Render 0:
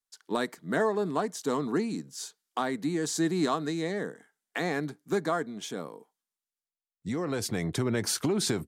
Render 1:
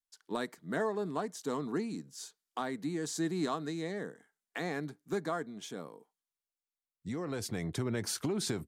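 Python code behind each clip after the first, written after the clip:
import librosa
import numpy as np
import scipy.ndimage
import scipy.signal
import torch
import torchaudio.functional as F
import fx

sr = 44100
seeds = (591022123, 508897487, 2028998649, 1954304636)

y = fx.low_shelf(x, sr, hz=84.0, db=6.0)
y = y * 10.0 ** (-6.5 / 20.0)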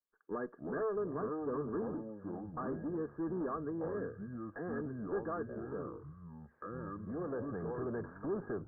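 y = fx.echo_pitch(x, sr, ms=175, semitones=-6, count=3, db_per_echo=-6.0)
y = fx.tube_stage(y, sr, drive_db=34.0, bias=0.35)
y = scipy.signal.sosfilt(scipy.signal.cheby1(6, 9, 1700.0, 'lowpass', fs=sr, output='sos'), y)
y = y * 10.0 ** (5.0 / 20.0)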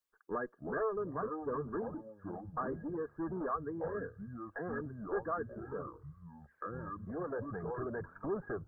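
y = fx.dereverb_blind(x, sr, rt60_s=1.2)
y = fx.peak_eq(y, sr, hz=260.0, db=-6.5, octaves=1.8)
y = y * 10.0 ** (5.5 / 20.0)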